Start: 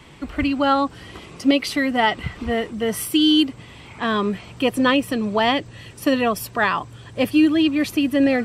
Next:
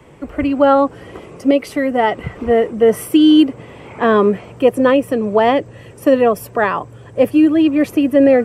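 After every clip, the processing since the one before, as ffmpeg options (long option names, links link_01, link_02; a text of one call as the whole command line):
ffmpeg -i in.wav -filter_complex "[0:a]equalizer=frequency=125:width_type=o:width=1:gain=3,equalizer=frequency=500:width_type=o:width=1:gain=10,equalizer=frequency=4000:width_type=o:width=1:gain=-11,acrossover=split=160|4900[link_01][link_02][link_03];[link_02]dynaudnorm=framelen=290:gausssize=3:maxgain=11.5dB[link_04];[link_01][link_04][link_03]amix=inputs=3:normalize=0,volume=-1dB" out.wav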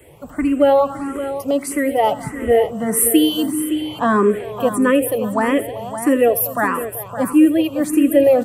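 ffmpeg -i in.wav -filter_complex "[0:a]aexciter=amount=8.1:drive=2.9:freq=7600,asplit=2[link_01][link_02];[link_02]aecho=0:1:82|210|383|563:0.141|0.119|0.15|0.282[link_03];[link_01][link_03]amix=inputs=2:normalize=0,asplit=2[link_04][link_05];[link_05]afreqshift=1.6[link_06];[link_04][link_06]amix=inputs=2:normalize=1" out.wav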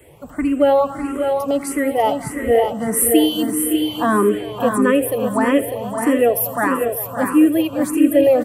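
ffmpeg -i in.wav -af "aecho=1:1:598:0.473,volume=-1dB" out.wav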